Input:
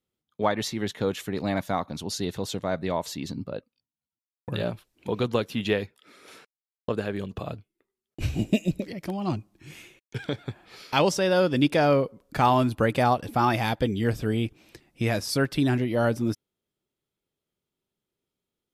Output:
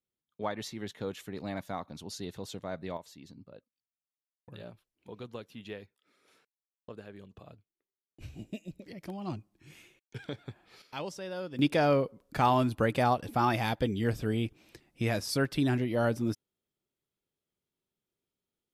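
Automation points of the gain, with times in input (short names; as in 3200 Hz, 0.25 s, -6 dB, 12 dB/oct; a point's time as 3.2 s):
-10 dB
from 2.97 s -17.5 dB
from 8.86 s -9 dB
from 10.82 s -16.5 dB
from 11.59 s -4.5 dB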